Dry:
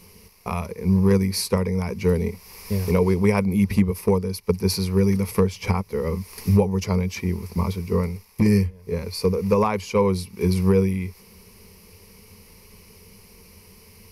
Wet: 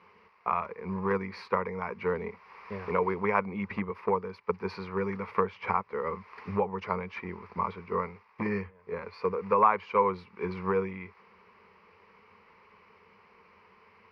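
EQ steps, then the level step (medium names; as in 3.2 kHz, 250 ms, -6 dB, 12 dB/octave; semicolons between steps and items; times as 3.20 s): band-pass filter 1.3 kHz, Q 1.9; distance through air 320 m; +7.0 dB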